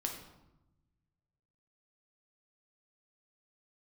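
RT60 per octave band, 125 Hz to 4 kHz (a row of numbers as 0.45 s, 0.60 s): 2.1 s, 1.4 s, 0.95 s, 0.95 s, 0.70 s, 0.60 s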